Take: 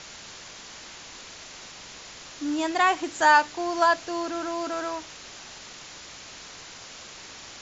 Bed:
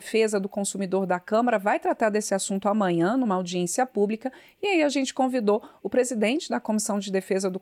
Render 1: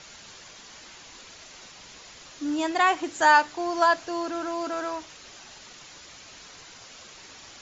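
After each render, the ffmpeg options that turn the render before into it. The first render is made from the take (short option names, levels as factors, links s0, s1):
-af "afftdn=nr=6:nf=-44"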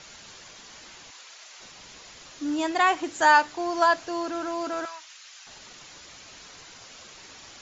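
-filter_complex "[0:a]asplit=3[s0][s1][s2];[s0]afade=t=out:st=1.1:d=0.02[s3];[s1]highpass=720,afade=t=in:st=1.1:d=0.02,afade=t=out:st=1.59:d=0.02[s4];[s2]afade=t=in:st=1.59:d=0.02[s5];[s3][s4][s5]amix=inputs=3:normalize=0,asettb=1/sr,asplit=3[s6][s7][s8];[s6]atrim=end=4.854[s9];[s7]atrim=start=4.85:end=5.47,asetpts=PTS-STARTPTS,afade=t=in:d=0.004:c=qsin,afade=t=out:st=0.616:d=0.004:c=qsin,highpass=1400[s10];[s8]atrim=start=5.466[s11];[s9][s10]acrossfade=d=0.004:c1=hsin:c2=qsin[s12];[s12][s11]acrossfade=d=0.004:c1=qsin:c2=hsin"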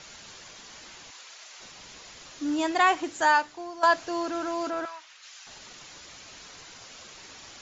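-filter_complex "[0:a]asettb=1/sr,asplit=3[s0][s1][s2];[s0]atrim=end=4.704[s3];[s1]atrim=start=4.7:end=5.23,asetpts=PTS-STARTPTS,afade=t=in:d=0.004:c=qsin,afade=t=out:st=0.526:d=0.004:c=qsin,highshelf=f=5000:g=-12[s4];[s2]atrim=start=5.226[s5];[s3][s4]acrossfade=d=0.004:c1=hsin:c2=qsin[s6];[s6][s5]acrossfade=d=0.004:c1=qsin:c2=hsin,asplit=2[s7][s8];[s7]atrim=end=3.83,asetpts=PTS-STARTPTS,afade=t=out:st=2.92:d=0.91:silence=0.188365[s9];[s8]atrim=start=3.83,asetpts=PTS-STARTPTS,afade=t=in:d=0.004:c=hsin:silence=0.188365[s10];[s9][s10]concat=n=2:v=0:a=1"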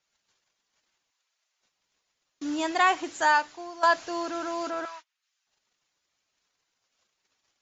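-af "agate=range=0.0251:threshold=0.00794:ratio=16:detection=peak,lowshelf=f=350:g=-5"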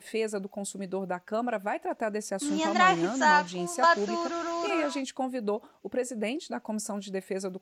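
-filter_complex "[1:a]volume=0.398[s0];[0:a][s0]amix=inputs=2:normalize=0"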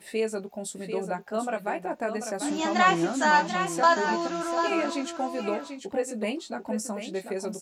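-filter_complex "[0:a]asplit=2[s0][s1];[s1]adelay=18,volume=0.447[s2];[s0][s2]amix=inputs=2:normalize=0,aecho=1:1:741:0.398"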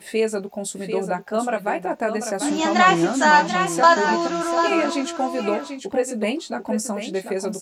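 -af "volume=2.11,alimiter=limit=0.708:level=0:latency=1"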